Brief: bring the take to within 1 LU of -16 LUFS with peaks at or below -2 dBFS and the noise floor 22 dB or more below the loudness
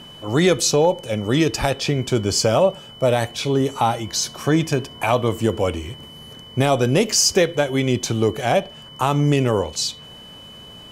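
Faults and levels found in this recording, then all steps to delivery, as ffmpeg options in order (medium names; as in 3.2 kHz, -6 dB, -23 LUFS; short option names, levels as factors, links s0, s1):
steady tone 3 kHz; tone level -40 dBFS; loudness -20.0 LUFS; peak level -4.0 dBFS; loudness target -16.0 LUFS
-> -af "bandreject=f=3000:w=30"
-af "volume=1.58,alimiter=limit=0.794:level=0:latency=1"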